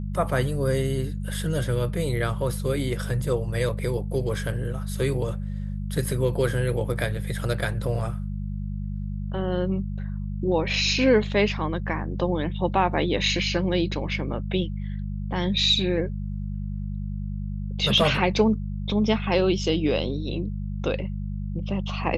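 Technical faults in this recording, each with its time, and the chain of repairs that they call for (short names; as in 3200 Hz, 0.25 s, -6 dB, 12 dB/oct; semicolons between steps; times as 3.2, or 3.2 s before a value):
hum 50 Hz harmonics 4 -30 dBFS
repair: de-hum 50 Hz, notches 4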